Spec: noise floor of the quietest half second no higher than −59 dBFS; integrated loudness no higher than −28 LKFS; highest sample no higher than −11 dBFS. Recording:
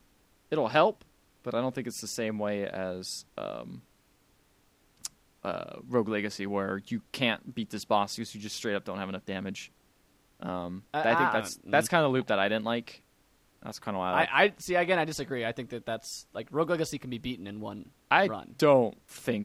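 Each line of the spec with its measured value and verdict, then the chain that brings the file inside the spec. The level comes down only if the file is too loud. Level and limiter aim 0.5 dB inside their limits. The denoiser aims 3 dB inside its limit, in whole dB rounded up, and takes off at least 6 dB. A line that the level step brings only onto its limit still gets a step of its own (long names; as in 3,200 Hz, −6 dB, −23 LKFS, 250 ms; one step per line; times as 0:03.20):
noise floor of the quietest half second −66 dBFS: in spec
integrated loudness −30.0 LKFS: in spec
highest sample −6.5 dBFS: out of spec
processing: brickwall limiter −11.5 dBFS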